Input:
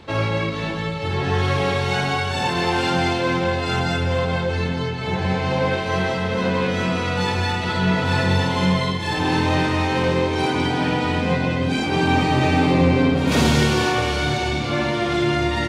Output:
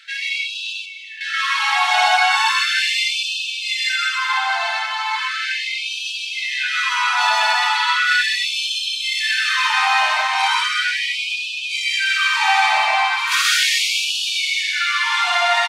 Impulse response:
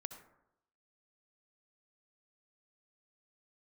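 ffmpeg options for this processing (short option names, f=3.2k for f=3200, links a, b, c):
-filter_complex "[0:a]asettb=1/sr,asplit=3[a][b][c];[a]atrim=end=0.734[d];[b]atrim=start=0.73:end=1.21,asetpts=PTS-STARTPTS,afade=t=in:d=0.004:c=qsin,afade=t=out:st=0.476:d=0.004:c=qsin,asplit=3[e][f][g];[e]bandpass=f=530:t=q:w=8,volume=0dB[h];[f]bandpass=f=1.84k:t=q:w=8,volume=-6dB[i];[g]bandpass=f=2.48k:t=q:w=8,volume=-9dB[j];[h][i][j]amix=inputs=3:normalize=0[k];[c]atrim=start=1.206[l];[d][k]acrossfade=d=0.004:c1=hsin:c2=qsin[m];[m][l]acrossfade=d=0.004:c1=qsin:c2=hsin,aecho=1:1:309|618|927|1236|1545:0.188|0.104|0.057|0.0313|0.0172,asplit=2[n][o];[1:a]atrim=start_sample=2205,adelay=127[p];[o][p]afir=irnorm=-1:irlink=0,volume=4dB[q];[n][q]amix=inputs=2:normalize=0,afftfilt=real='re*gte(b*sr/1024,630*pow(2400/630,0.5+0.5*sin(2*PI*0.37*pts/sr)))':imag='im*gte(b*sr/1024,630*pow(2400/630,0.5+0.5*sin(2*PI*0.37*pts/sr)))':win_size=1024:overlap=0.75,volume=5.5dB"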